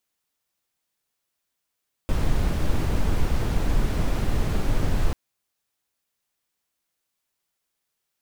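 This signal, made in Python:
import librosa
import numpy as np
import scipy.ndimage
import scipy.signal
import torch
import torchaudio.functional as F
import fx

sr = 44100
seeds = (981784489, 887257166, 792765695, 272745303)

y = fx.noise_colour(sr, seeds[0], length_s=3.04, colour='brown', level_db=-20.5)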